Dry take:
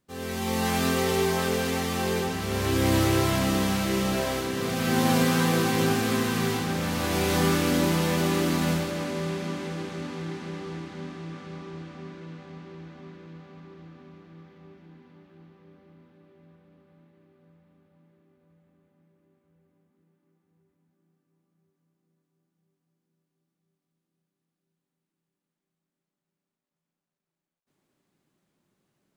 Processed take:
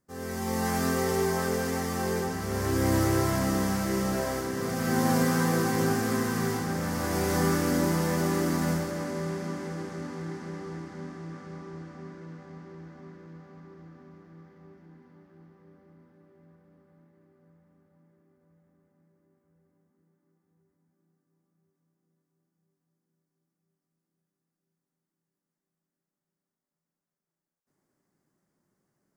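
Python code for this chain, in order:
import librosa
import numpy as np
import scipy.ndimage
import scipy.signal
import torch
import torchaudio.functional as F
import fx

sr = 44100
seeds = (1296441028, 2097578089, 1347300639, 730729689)

y = fx.band_shelf(x, sr, hz=3100.0, db=-10.0, octaves=1.0)
y = y * librosa.db_to_amplitude(-2.0)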